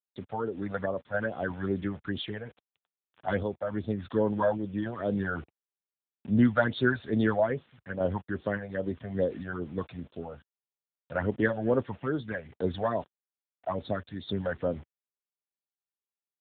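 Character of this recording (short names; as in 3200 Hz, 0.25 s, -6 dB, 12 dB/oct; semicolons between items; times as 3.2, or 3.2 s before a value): phasing stages 12, 2.4 Hz, lowest notch 320–2100 Hz; a quantiser's noise floor 8-bit, dither none; random-step tremolo; AMR-NB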